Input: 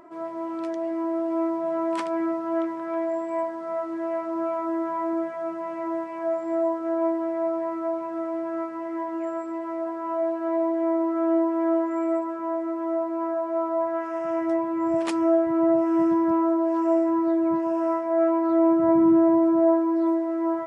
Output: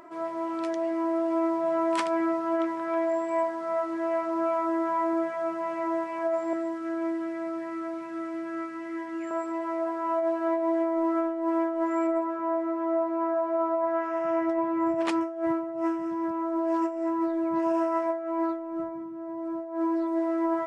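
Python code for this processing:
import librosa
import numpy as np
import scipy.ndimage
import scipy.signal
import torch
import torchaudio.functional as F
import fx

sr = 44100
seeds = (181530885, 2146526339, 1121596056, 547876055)

y = fx.band_shelf(x, sr, hz=680.0, db=-11.5, octaves=1.7, at=(6.53, 9.31))
y = fx.lowpass(y, sr, hz=2300.0, slope=6, at=(12.07, 15.21))
y = fx.tilt_shelf(y, sr, db=-3.5, hz=940.0)
y = fx.over_compress(y, sr, threshold_db=-26.0, ratio=-0.5)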